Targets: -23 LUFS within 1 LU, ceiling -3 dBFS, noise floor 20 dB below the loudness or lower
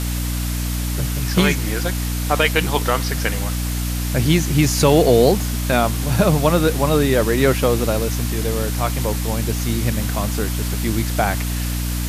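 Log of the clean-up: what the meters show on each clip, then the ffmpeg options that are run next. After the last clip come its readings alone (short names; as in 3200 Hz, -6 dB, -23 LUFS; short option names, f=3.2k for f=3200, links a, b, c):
hum 60 Hz; harmonics up to 300 Hz; hum level -20 dBFS; noise floor -23 dBFS; noise floor target -39 dBFS; loudness -19.0 LUFS; peak -1.5 dBFS; loudness target -23.0 LUFS
-> -af "bandreject=f=60:t=h:w=6,bandreject=f=120:t=h:w=6,bandreject=f=180:t=h:w=6,bandreject=f=240:t=h:w=6,bandreject=f=300:t=h:w=6"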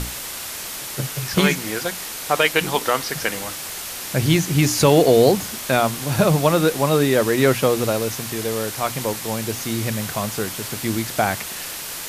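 hum none; noise floor -32 dBFS; noise floor target -41 dBFS
-> -af "afftdn=nr=9:nf=-32"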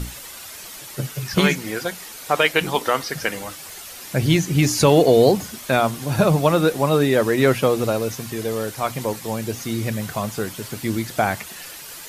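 noise floor -38 dBFS; noise floor target -41 dBFS
-> -af "afftdn=nr=6:nf=-38"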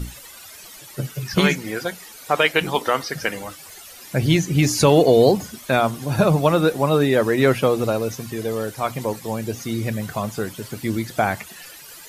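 noise floor -42 dBFS; loudness -20.5 LUFS; peak -2.5 dBFS; loudness target -23.0 LUFS
-> -af "volume=-2.5dB"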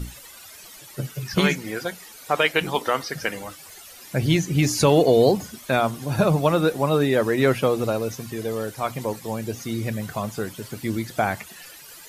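loudness -23.0 LUFS; peak -5.0 dBFS; noise floor -44 dBFS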